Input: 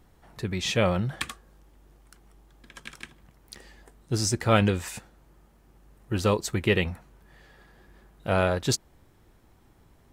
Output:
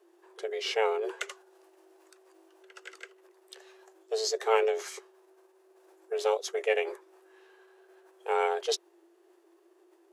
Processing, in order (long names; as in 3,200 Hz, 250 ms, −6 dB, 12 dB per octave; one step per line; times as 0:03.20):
frequency shifter +330 Hz
formants moved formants −4 semitones
level −4 dB